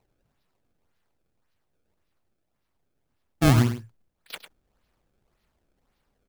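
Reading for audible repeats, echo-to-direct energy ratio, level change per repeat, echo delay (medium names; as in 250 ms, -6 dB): 1, -10.5 dB, no regular repeats, 101 ms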